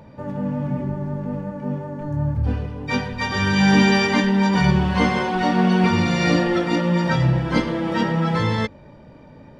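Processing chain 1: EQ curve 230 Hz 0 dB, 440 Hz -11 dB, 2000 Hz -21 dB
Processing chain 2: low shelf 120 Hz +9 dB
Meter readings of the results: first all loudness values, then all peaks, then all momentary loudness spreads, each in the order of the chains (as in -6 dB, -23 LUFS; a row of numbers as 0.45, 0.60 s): -22.5, -18.0 LUFS; -7.0, -1.5 dBFS; 11, 10 LU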